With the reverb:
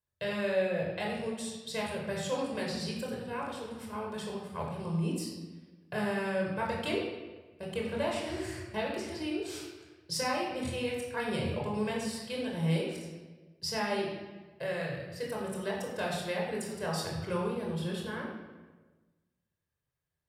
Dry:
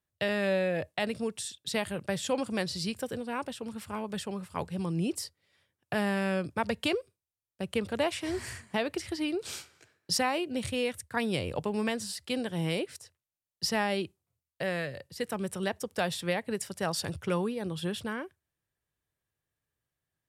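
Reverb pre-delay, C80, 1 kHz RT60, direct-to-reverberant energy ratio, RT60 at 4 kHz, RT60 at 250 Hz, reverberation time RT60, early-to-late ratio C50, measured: 23 ms, 4.0 dB, 1.2 s, -2.5 dB, 0.95 s, 1.5 s, 1.3 s, 2.0 dB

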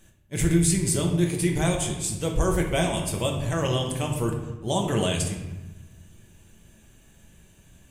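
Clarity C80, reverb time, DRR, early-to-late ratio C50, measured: 7.5 dB, 1.1 s, 1.0 dB, 5.5 dB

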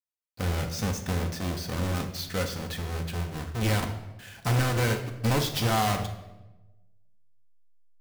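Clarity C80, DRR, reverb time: 11.5 dB, 4.0 dB, 1.0 s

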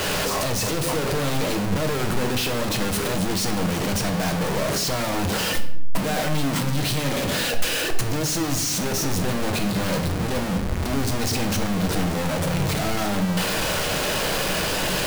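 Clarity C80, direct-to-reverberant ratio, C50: 13.5 dB, 5.0 dB, 10.0 dB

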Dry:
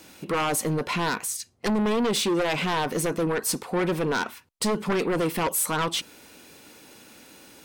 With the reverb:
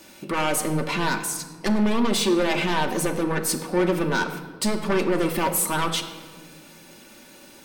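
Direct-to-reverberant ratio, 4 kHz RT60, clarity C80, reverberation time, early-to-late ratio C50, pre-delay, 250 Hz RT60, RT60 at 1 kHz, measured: 2.5 dB, 1.0 s, 11.0 dB, 1.6 s, 9.5 dB, 3 ms, 2.6 s, 1.5 s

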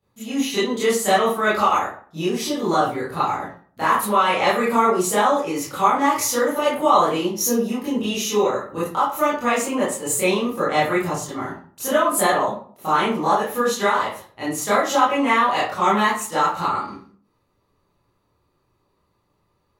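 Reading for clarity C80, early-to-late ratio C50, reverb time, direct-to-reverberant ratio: 8.5 dB, 2.0 dB, 0.50 s, -12.0 dB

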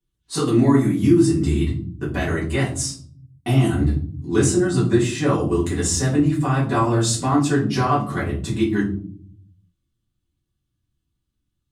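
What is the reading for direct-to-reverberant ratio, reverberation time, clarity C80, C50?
-8.0 dB, 0.50 s, 13.0 dB, 8.0 dB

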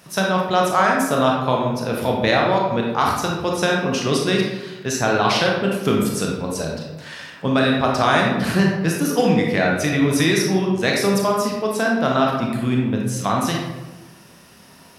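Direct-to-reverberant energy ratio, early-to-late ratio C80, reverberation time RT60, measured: -1.0 dB, 4.5 dB, 1.1 s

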